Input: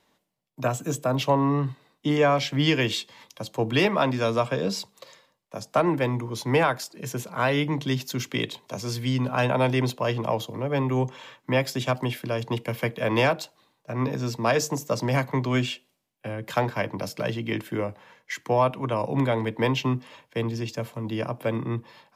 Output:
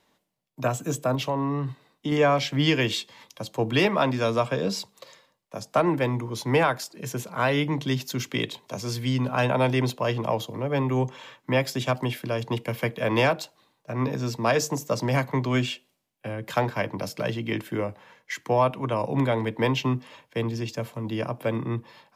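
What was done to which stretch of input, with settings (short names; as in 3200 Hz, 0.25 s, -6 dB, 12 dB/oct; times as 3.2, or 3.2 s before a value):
1.15–2.12 compressor 2:1, threshold -26 dBFS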